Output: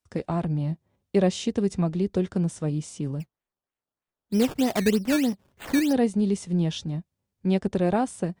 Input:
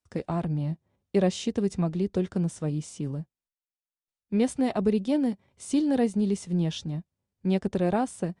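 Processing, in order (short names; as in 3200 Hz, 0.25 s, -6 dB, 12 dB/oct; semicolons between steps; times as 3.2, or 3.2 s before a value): 3.2–5.93 decimation with a swept rate 15×, swing 100% 3.2 Hz; gain +2 dB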